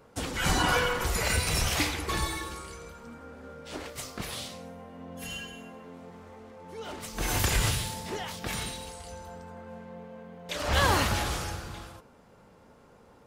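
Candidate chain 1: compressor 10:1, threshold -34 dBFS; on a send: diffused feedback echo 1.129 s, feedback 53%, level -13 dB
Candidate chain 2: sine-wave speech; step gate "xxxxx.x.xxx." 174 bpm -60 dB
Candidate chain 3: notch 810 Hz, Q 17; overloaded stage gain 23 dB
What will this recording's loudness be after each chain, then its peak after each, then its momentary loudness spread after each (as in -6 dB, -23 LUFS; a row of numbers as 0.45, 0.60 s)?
-39.5, -31.0, -31.0 LUFS; -24.0, -10.5, -23.0 dBFS; 10, 19, 19 LU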